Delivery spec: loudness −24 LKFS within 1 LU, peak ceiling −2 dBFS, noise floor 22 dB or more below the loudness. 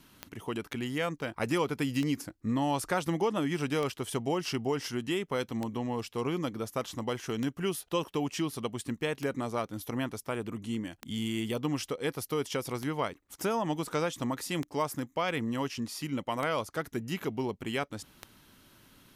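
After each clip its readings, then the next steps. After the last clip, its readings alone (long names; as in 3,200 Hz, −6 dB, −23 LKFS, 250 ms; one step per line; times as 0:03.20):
number of clicks 11; integrated loudness −33.0 LKFS; sample peak −16.0 dBFS; target loudness −24.0 LKFS
→ click removal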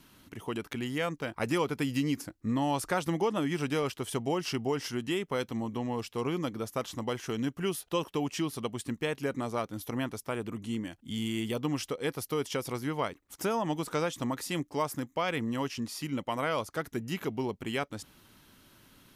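number of clicks 0; integrated loudness −33.0 LKFS; sample peak −16.0 dBFS; target loudness −24.0 LKFS
→ level +9 dB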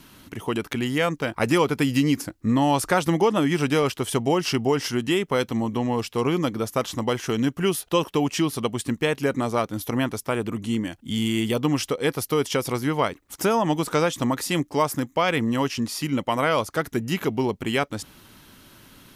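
integrated loudness −24.0 LKFS; sample peak −7.0 dBFS; background noise floor −54 dBFS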